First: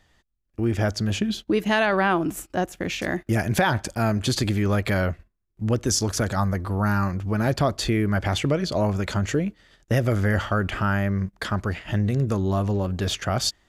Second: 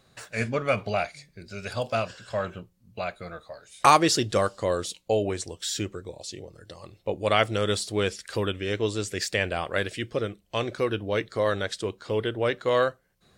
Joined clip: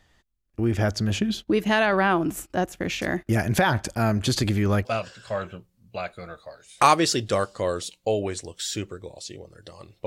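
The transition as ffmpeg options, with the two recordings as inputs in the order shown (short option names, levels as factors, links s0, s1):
-filter_complex "[0:a]apad=whole_dur=10.06,atrim=end=10.06,atrim=end=4.852[s0];[1:a]atrim=start=1.878:end=7.09[s1];[s0][s1]acrossfade=d=0.004:c1=hsin:c2=hsin"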